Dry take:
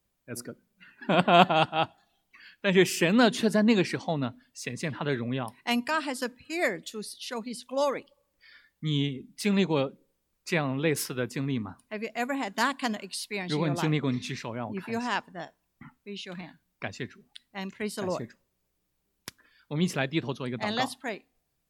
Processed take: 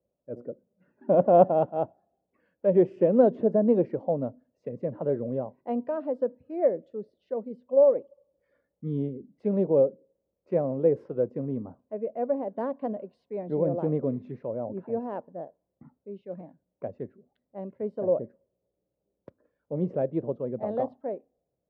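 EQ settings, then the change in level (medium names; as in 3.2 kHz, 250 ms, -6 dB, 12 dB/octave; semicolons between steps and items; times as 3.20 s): high-pass 71 Hz; resonant low-pass 550 Hz, resonance Q 4.9; -3.5 dB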